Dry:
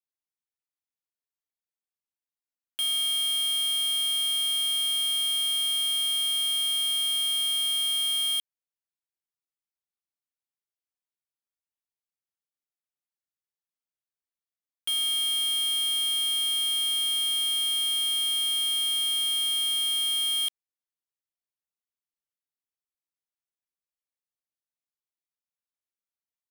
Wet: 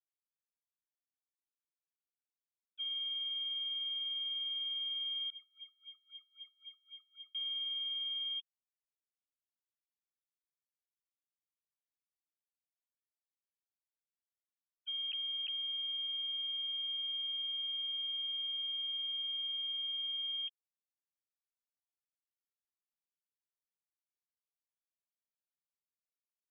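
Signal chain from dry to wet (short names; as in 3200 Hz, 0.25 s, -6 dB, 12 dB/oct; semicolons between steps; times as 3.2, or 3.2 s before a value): sine-wave speech; limiter -26 dBFS, peak gain reduction 5 dB; 5.3–7.35 wah 3.8 Hz 370–2900 Hz, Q 11; gain -8.5 dB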